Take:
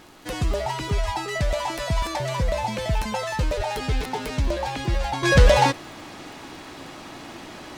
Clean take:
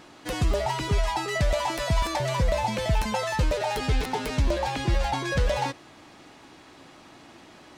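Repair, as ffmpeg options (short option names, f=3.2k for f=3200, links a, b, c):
-filter_complex "[0:a]adeclick=t=4,asplit=3[a][b][c];[a]afade=t=out:st=1.05:d=0.02[d];[b]highpass=f=140:w=0.5412,highpass=f=140:w=1.3066,afade=t=in:st=1.05:d=0.02,afade=t=out:st=1.17:d=0.02[e];[c]afade=t=in:st=1.17:d=0.02[f];[d][e][f]amix=inputs=3:normalize=0,asplit=3[g][h][i];[g]afade=t=out:st=3.56:d=0.02[j];[h]highpass=f=140:w=0.5412,highpass=f=140:w=1.3066,afade=t=in:st=3.56:d=0.02,afade=t=out:st=3.68:d=0.02[k];[i]afade=t=in:st=3.68:d=0.02[l];[j][k][l]amix=inputs=3:normalize=0,agate=range=-21dB:threshold=-32dB,asetnsamples=n=441:p=0,asendcmd='5.23 volume volume -10dB',volume=0dB"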